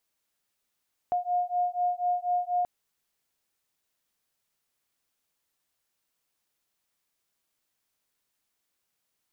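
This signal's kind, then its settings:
two tones that beat 712 Hz, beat 4.1 Hz, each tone −28 dBFS 1.53 s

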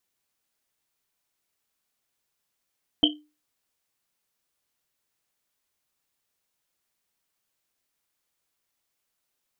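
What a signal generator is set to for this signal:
drum after Risset, pitch 300 Hz, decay 0.31 s, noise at 3,100 Hz, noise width 220 Hz, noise 60%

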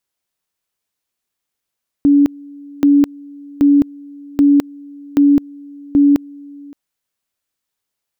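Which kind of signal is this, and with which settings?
tone at two levels in turn 285 Hz −6.5 dBFS, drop 25.5 dB, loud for 0.21 s, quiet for 0.57 s, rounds 6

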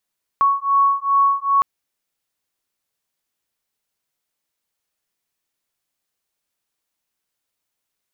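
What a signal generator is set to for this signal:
two tones that beat 1,110 Hz, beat 2.5 Hz, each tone −17 dBFS 1.21 s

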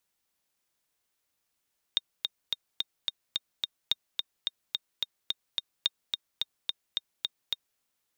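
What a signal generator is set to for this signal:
click track 216 BPM, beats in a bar 7, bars 3, 3,680 Hz, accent 4 dB −11.5 dBFS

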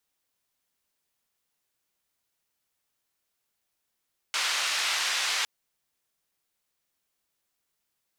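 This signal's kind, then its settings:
band-limited noise 1,100–4,700 Hz, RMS −28 dBFS 1.11 s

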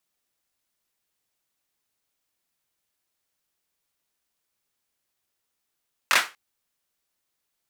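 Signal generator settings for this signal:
synth clap length 0.24 s, bursts 3, apart 22 ms, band 1,600 Hz, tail 0.26 s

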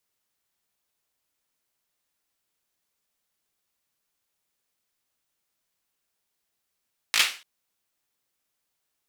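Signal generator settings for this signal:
synth clap length 0.29 s, apart 18 ms, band 2,600 Hz, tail 0.35 s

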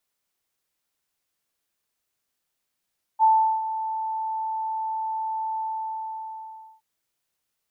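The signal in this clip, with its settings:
note with an ADSR envelope sine 882 Hz, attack 42 ms, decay 377 ms, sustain −12.5 dB, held 2.39 s, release 1,230 ms −13 dBFS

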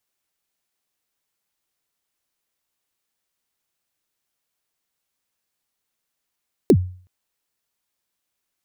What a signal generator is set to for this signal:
synth kick length 0.37 s, from 460 Hz, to 91 Hz, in 63 ms, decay 0.45 s, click on, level −6 dB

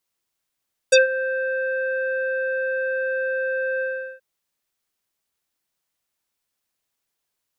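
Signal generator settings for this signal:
subtractive voice square C5 24 dB per octave, low-pass 1,900 Hz, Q 3.8, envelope 2.5 octaves, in 0.07 s, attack 10 ms, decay 0.14 s, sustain −14.5 dB, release 0.39 s, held 2.89 s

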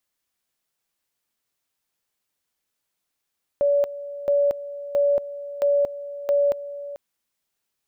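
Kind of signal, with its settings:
tone at two levels in turn 571 Hz −16 dBFS, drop 15 dB, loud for 0.23 s, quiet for 0.44 s, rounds 5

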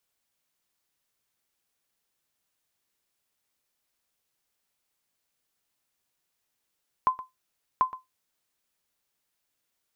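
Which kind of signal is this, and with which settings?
ping with an echo 1,030 Hz, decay 0.17 s, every 0.74 s, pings 2, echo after 0.12 s, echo −16 dB −13.5 dBFS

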